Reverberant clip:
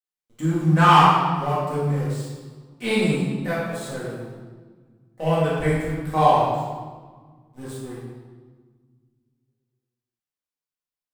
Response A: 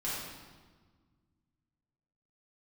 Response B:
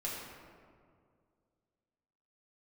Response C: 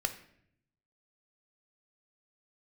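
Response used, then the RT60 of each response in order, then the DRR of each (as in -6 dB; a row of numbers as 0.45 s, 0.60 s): A; 1.5 s, 2.1 s, 0.70 s; -9.0 dB, -5.5 dB, 8.0 dB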